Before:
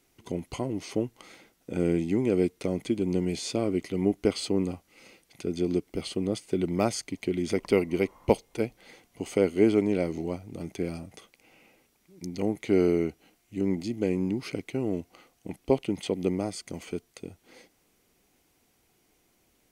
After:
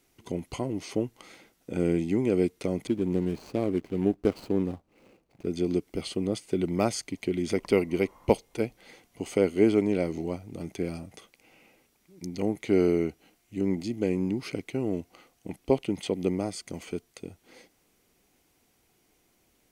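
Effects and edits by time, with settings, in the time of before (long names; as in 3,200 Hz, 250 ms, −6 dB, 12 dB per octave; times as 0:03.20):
0:02.87–0:05.46: running median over 25 samples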